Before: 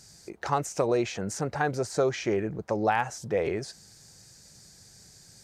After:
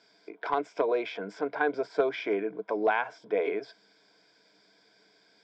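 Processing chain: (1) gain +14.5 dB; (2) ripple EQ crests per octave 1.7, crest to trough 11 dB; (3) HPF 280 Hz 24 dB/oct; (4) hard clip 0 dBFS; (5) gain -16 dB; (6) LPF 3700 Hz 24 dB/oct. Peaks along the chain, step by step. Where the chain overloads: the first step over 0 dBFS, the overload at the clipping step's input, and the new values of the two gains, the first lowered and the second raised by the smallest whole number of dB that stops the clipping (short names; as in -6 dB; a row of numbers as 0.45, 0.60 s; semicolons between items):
+3.0, +5.0, +5.0, 0.0, -16.0, -15.5 dBFS; step 1, 5.0 dB; step 1 +9.5 dB, step 5 -11 dB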